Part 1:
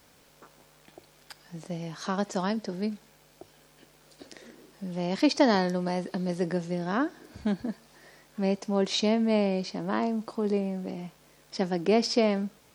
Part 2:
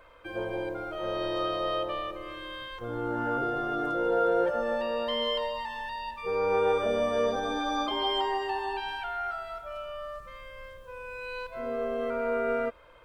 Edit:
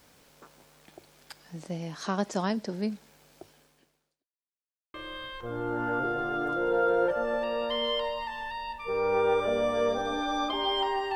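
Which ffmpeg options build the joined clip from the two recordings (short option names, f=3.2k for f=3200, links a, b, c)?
-filter_complex "[0:a]apad=whole_dur=11.15,atrim=end=11.15,asplit=2[a][b];[a]atrim=end=4.29,asetpts=PTS-STARTPTS,afade=t=out:st=3.45:d=0.84:c=qua[c];[b]atrim=start=4.29:end=4.94,asetpts=PTS-STARTPTS,volume=0[d];[1:a]atrim=start=2.32:end=8.53,asetpts=PTS-STARTPTS,afade=t=in:d=0.004:c=hsin[e];[c][d][e]concat=n=3:v=0:a=1"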